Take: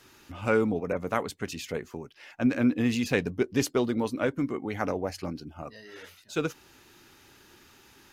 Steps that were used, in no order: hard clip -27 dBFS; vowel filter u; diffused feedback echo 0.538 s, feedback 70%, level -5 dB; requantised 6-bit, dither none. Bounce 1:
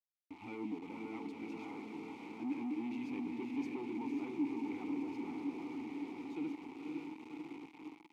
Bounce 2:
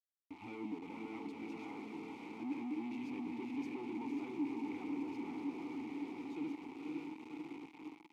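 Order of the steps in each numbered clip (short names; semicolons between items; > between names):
diffused feedback echo > requantised > hard clip > vowel filter; diffused feedback echo > hard clip > requantised > vowel filter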